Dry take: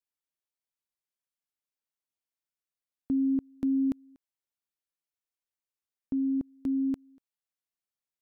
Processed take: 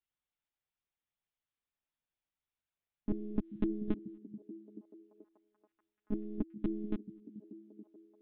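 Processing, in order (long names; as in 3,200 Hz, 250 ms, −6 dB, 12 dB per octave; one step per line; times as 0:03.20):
phase-vocoder pitch shift with formants kept +3.5 semitones
one-pitch LPC vocoder at 8 kHz 210 Hz
echo through a band-pass that steps 433 ms, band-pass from 180 Hz, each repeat 0.7 octaves, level −11 dB
level +3 dB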